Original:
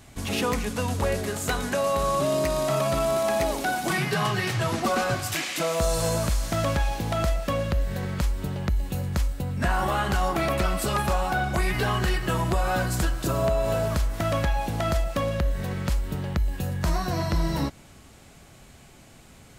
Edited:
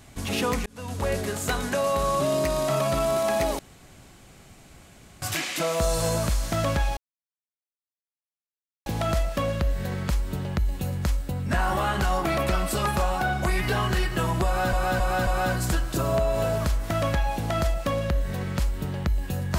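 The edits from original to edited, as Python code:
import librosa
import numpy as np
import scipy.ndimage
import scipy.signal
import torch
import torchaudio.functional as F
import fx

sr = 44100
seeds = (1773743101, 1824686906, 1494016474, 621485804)

y = fx.edit(x, sr, fx.fade_in_span(start_s=0.66, length_s=0.48),
    fx.room_tone_fill(start_s=3.59, length_s=1.63),
    fx.insert_silence(at_s=6.97, length_s=1.89),
    fx.repeat(start_s=12.57, length_s=0.27, count=4), tone=tone)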